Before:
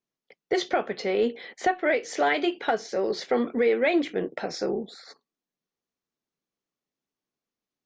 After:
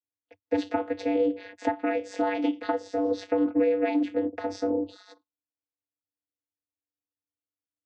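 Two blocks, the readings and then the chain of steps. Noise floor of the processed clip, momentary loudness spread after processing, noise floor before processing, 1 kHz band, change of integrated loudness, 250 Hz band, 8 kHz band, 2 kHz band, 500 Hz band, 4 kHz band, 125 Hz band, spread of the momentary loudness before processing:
under -85 dBFS, 7 LU, under -85 dBFS, -4.0 dB, -1.5 dB, +3.0 dB, n/a, -9.0 dB, -2.0 dB, -10.0 dB, -5.0 dB, 7 LU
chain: spectral noise reduction 16 dB; compressor, threshold -25 dBFS, peak gain reduction 7 dB; vocoder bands 16, square 97.5 Hz; gain +4.5 dB

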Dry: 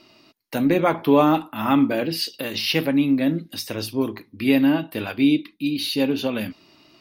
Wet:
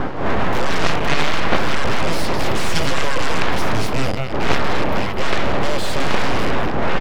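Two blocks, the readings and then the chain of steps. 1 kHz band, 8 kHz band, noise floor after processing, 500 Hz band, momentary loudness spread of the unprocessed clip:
+6.0 dB, +7.0 dB, -20 dBFS, +2.0 dB, 11 LU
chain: rattling part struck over -34 dBFS, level -13 dBFS; wind noise 550 Hz -22 dBFS; on a send: echo 0.212 s -10 dB; on the sum: AGC gain up to 9.5 dB; full-wave rectifier; LPF 1800 Hz 6 dB/oct; in parallel at -12 dB: sine folder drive 16 dB, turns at -1 dBFS; on the sum: gain -1 dB

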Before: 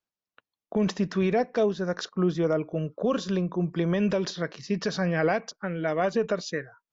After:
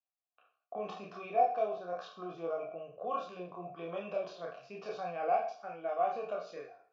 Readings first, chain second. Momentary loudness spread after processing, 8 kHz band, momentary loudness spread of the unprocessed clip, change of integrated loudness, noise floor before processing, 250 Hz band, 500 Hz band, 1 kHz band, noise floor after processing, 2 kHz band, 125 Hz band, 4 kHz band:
14 LU, n/a, 7 LU, -9.5 dB, under -85 dBFS, -22.5 dB, -9.0 dB, +0.5 dB, under -85 dBFS, -15.0 dB, -25.5 dB, -17.0 dB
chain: spectral trails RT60 0.49 s; chorus voices 6, 0.53 Hz, delay 29 ms, depth 1.5 ms; vowel filter a; gain +3 dB

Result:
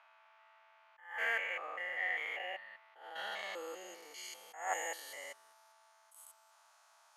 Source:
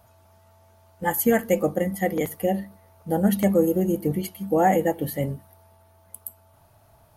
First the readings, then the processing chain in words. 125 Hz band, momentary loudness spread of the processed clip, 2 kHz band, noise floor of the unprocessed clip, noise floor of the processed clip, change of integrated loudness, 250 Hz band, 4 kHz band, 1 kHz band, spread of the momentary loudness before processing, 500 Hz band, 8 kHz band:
under -40 dB, 21 LU, -2.5 dB, -57 dBFS, -67 dBFS, -16.0 dB, -40.0 dB, -3.0 dB, -16.0 dB, 19 LU, -24.0 dB, -12.0 dB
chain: stepped spectrum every 0.2 s; ladder high-pass 930 Hz, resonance 30%; low-pass sweep 2500 Hz -> 6900 Hz, 2.7–4.37; attack slew limiter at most 120 dB/s; gain +5 dB

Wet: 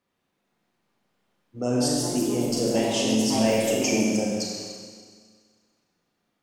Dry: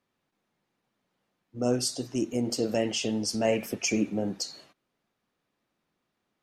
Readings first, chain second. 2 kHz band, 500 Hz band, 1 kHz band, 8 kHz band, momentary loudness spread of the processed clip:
+4.5 dB, +4.5 dB, +7.0 dB, +5.5 dB, 10 LU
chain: Schroeder reverb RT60 1.8 s, combs from 32 ms, DRR -1.5 dB; echoes that change speed 0.444 s, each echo +3 st, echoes 3, each echo -6 dB

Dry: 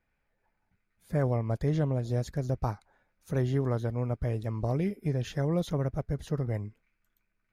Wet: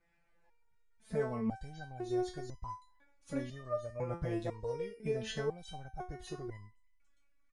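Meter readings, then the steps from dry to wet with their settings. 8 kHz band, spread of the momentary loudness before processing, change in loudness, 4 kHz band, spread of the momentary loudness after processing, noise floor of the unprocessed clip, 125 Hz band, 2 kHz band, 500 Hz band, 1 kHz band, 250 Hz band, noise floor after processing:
n/a, 6 LU, -8.5 dB, -1.0 dB, 11 LU, -79 dBFS, -15.5 dB, -3.5 dB, -4.5 dB, -4.0 dB, -8.0 dB, -70 dBFS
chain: compressor 2.5:1, threshold -29 dBFS, peak gain reduction 5 dB; downsampling 22050 Hz; stepped resonator 2 Hz 170–1000 Hz; gain +14 dB

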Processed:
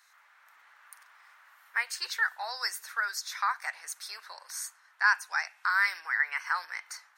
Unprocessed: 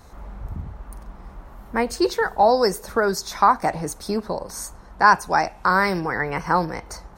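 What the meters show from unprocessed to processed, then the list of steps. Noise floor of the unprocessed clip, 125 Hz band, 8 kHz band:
-45 dBFS, under -40 dB, -5.0 dB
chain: octaver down 2 oct, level -1 dB; AGC gain up to 5.5 dB; ladder high-pass 1400 Hz, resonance 40%

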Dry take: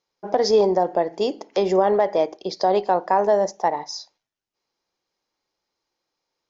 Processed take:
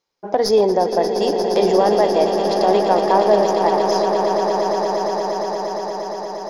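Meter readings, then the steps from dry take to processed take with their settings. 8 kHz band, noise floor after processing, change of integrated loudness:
n/a, -29 dBFS, +3.5 dB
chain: tracing distortion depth 0.023 ms; swelling echo 0.117 s, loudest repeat 8, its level -10 dB; gain +2 dB

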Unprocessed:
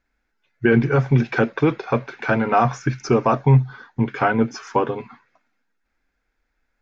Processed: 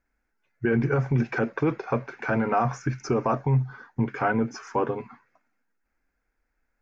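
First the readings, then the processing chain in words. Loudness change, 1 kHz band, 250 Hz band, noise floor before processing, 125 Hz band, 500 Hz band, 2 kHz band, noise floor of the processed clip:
-6.5 dB, -6.5 dB, -6.0 dB, -74 dBFS, -7.0 dB, -6.0 dB, -6.5 dB, -78 dBFS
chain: bell 3600 Hz -10.5 dB 0.75 oct; limiter -11 dBFS, peak gain reduction 7 dB; gain -3 dB

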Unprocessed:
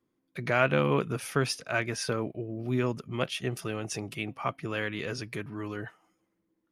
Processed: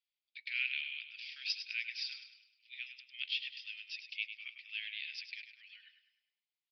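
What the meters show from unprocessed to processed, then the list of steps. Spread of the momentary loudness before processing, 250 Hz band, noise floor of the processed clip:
11 LU, under -40 dB, under -85 dBFS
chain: steep high-pass 2300 Hz 48 dB/oct; feedback echo 0.102 s, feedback 44%, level -9.5 dB; downsampling 11025 Hz

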